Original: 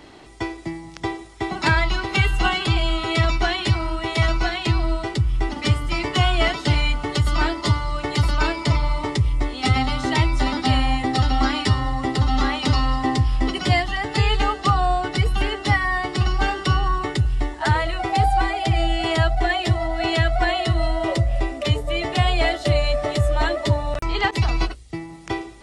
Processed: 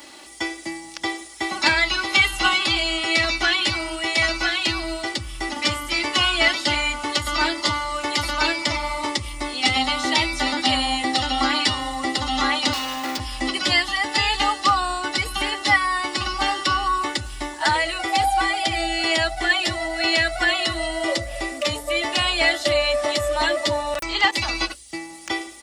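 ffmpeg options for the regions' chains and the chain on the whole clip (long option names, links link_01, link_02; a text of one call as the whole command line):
ffmpeg -i in.wav -filter_complex "[0:a]asettb=1/sr,asplit=3[link_01][link_02][link_03];[link_01]atrim=end=12.734[link_04];[link_02]atrim=start=12.73:end=13.2,asetpts=PTS-STARTPTS,afade=type=in:duration=0.004:curve=qsin,afade=type=out:start_time=0.466:duration=0.004:curve=qsin,highpass=100,lowpass=6300,asoftclip=type=hard:threshold=-24.5dB[link_05];[link_03]atrim=start=13.196[link_06];[link_04][link_05]acrossfade=duration=0.004:curve1=hsin:curve2=qsin[link_07];[link_07][link_06]acrossfade=duration=0.004:curve1=qsin:curve2=hsin,acrossover=split=5800[link_08][link_09];[link_09]acompressor=threshold=-51dB:ratio=4:attack=1:release=60[link_10];[link_08][link_10]amix=inputs=2:normalize=0,aemphasis=mode=production:type=riaa,aecho=1:1:3.5:0.62" out.wav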